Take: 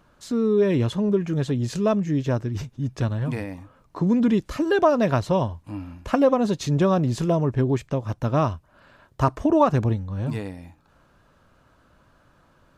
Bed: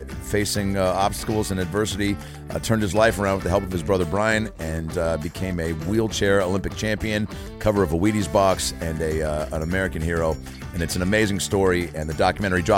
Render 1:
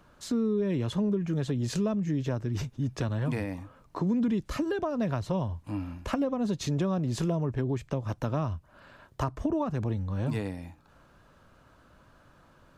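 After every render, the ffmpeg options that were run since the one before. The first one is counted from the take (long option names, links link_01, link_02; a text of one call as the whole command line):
ffmpeg -i in.wav -filter_complex "[0:a]acrossover=split=200[link_01][link_02];[link_01]alimiter=level_in=4dB:limit=-24dB:level=0:latency=1,volume=-4dB[link_03];[link_02]acompressor=threshold=-30dB:ratio=6[link_04];[link_03][link_04]amix=inputs=2:normalize=0" out.wav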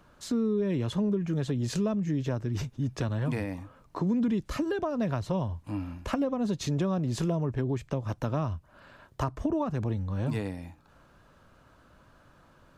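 ffmpeg -i in.wav -af anull out.wav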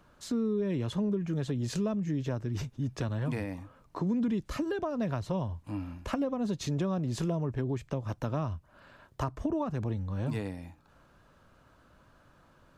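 ffmpeg -i in.wav -af "volume=-2.5dB" out.wav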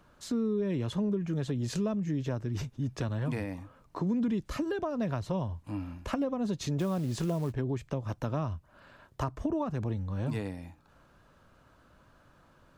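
ffmpeg -i in.wav -filter_complex "[0:a]asettb=1/sr,asplit=3[link_01][link_02][link_03];[link_01]atrim=end=6.794[link_04];[link_02]atrim=start=6.79:end=7.53,asetpts=PTS-STARTPTS,afade=type=in:duration=0.004:curve=qsin,afade=type=out:start_time=0.736:duration=0.004:curve=qsin,acrusher=bits=6:mode=log:mix=0:aa=0.000001[link_05];[link_03]atrim=start=7.526[link_06];[link_04][link_05]acrossfade=duration=0.004:curve1=hsin:curve2=qsin[link_07];[link_07][link_06]acrossfade=duration=0.004:curve1=qsin:curve2=hsin" out.wav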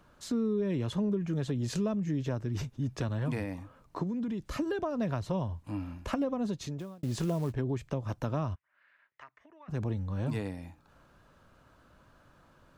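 ffmpeg -i in.wav -filter_complex "[0:a]asettb=1/sr,asplit=3[link_01][link_02][link_03];[link_01]atrim=end=4.034[link_04];[link_02]atrim=start=4.03:end=4.54,asetpts=PTS-STARTPTS,afade=type=in:duration=0.004:curve=qsin,afade=type=out:start_time=0.506:duration=0.004:curve=qsin,acompressor=threshold=-32dB:ratio=3:attack=3.2:release=140:knee=1:detection=peak[link_05];[link_03]atrim=start=4.536[link_06];[link_04][link_05]acrossfade=duration=0.004:curve1=hsin:curve2=qsin[link_07];[link_07][link_06]acrossfade=duration=0.004:curve1=qsin:curve2=hsin,asplit=3[link_08][link_09][link_10];[link_08]afade=type=out:start_time=8.54:duration=0.02[link_11];[link_09]bandpass=frequency=2000:width_type=q:width=4.9,afade=type=in:start_time=8.54:duration=0.02,afade=type=out:start_time=9.68:duration=0.02[link_12];[link_10]afade=type=in:start_time=9.68:duration=0.02[link_13];[link_11][link_12][link_13]amix=inputs=3:normalize=0,asplit=2[link_14][link_15];[link_14]atrim=end=7.03,asetpts=PTS-STARTPTS,afade=type=out:start_time=6.39:duration=0.64[link_16];[link_15]atrim=start=7.03,asetpts=PTS-STARTPTS,afade=type=in:duration=0.004:curve=hsin[link_17];[link_16][link_17]concat=n=2:v=0:a=1" out.wav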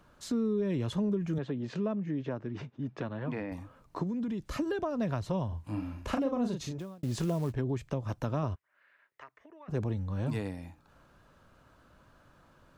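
ffmpeg -i in.wav -filter_complex "[0:a]asettb=1/sr,asplit=3[link_01][link_02][link_03];[link_01]atrim=end=1.384[link_04];[link_02]atrim=start=1.38:end=3.52,asetpts=PTS-STARTPTS,afade=type=in:duration=0.004:curve=qsin,afade=type=out:start_time=2.136:duration=0.004:curve=qsin,highpass=180,lowpass=2600[link_05];[link_03]atrim=start=3.516[link_06];[link_04][link_05]acrossfade=duration=0.004:curve1=hsin:curve2=qsin[link_07];[link_07][link_06]acrossfade=duration=0.004:curve1=qsin:curve2=hsin,asettb=1/sr,asplit=3[link_08][link_09][link_10];[link_08]atrim=end=5.484[link_11];[link_09]atrim=start=5.48:end=6.79,asetpts=PTS-STARTPTS,afade=type=in:duration=0.004:curve=qsin,afade=type=out:start_time=1.306:duration=0.004:curve=qsin,asplit=2[link_12][link_13];[link_13]adelay=37,volume=-5.5dB[link_14];[link_12][link_14]amix=inputs=2:normalize=0,atrim=end_sample=57771[link_15];[link_10]atrim=start=6.786[link_16];[link_11][link_15]acrossfade=duration=0.004:curve1=hsin:curve2=qsin[link_17];[link_17][link_16]acrossfade=duration=0.004:curve1=qsin:curve2=hsin,asettb=1/sr,asplit=3[link_18][link_19][link_20];[link_18]atrim=end=8.434[link_21];[link_19]atrim=start=8.43:end=9.81,asetpts=PTS-STARTPTS,afade=type=in:duration=0.004:curve=qsin,afade=type=out:start_time=1.376:duration=0.004:curve=qsin,equalizer=frequency=430:width=1.5:gain=7.5[link_22];[link_20]atrim=start=9.806[link_23];[link_21][link_22]acrossfade=duration=0.004:curve1=hsin:curve2=qsin[link_24];[link_24][link_23]acrossfade=duration=0.004:curve1=qsin:curve2=hsin" out.wav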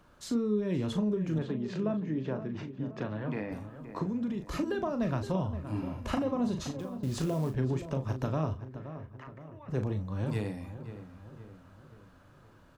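ffmpeg -i in.wav -filter_complex "[0:a]asplit=2[link_01][link_02];[link_02]adelay=38,volume=-8dB[link_03];[link_01][link_03]amix=inputs=2:normalize=0,asplit=2[link_04][link_05];[link_05]adelay=522,lowpass=frequency=2100:poles=1,volume=-11.5dB,asplit=2[link_06][link_07];[link_07]adelay=522,lowpass=frequency=2100:poles=1,volume=0.51,asplit=2[link_08][link_09];[link_09]adelay=522,lowpass=frequency=2100:poles=1,volume=0.51,asplit=2[link_10][link_11];[link_11]adelay=522,lowpass=frequency=2100:poles=1,volume=0.51,asplit=2[link_12][link_13];[link_13]adelay=522,lowpass=frequency=2100:poles=1,volume=0.51[link_14];[link_04][link_06][link_08][link_10][link_12][link_14]amix=inputs=6:normalize=0" out.wav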